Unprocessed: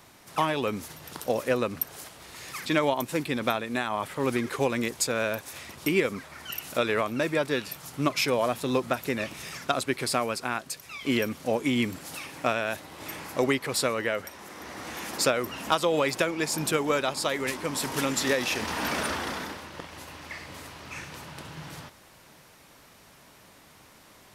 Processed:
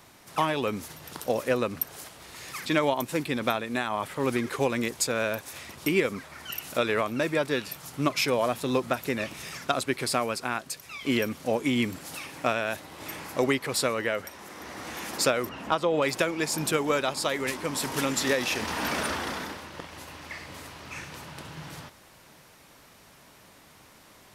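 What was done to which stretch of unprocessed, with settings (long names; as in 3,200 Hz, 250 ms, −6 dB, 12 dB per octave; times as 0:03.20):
0:15.49–0:16.02: low-pass filter 1,900 Hz 6 dB per octave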